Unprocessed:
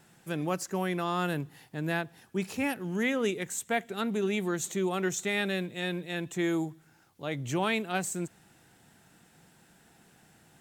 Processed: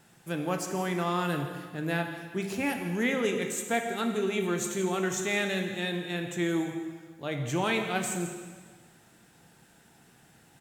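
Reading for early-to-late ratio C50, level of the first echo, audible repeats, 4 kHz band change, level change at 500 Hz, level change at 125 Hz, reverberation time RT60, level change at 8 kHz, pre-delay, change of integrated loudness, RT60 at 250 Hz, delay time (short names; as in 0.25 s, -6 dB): 6.0 dB, -14.5 dB, 1, +1.5 dB, +1.5 dB, +1.5 dB, 1.6 s, +1.5 dB, 4 ms, +1.0 dB, 1.6 s, 0.168 s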